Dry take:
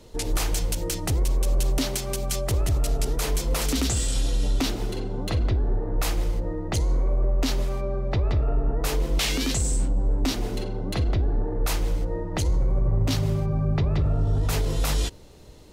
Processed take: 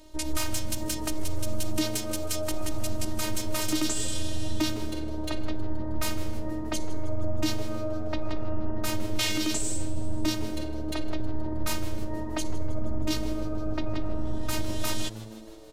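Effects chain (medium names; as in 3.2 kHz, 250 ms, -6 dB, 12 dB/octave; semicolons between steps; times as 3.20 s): robot voice 310 Hz; frequency-shifting echo 158 ms, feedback 62%, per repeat +110 Hz, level -18.5 dB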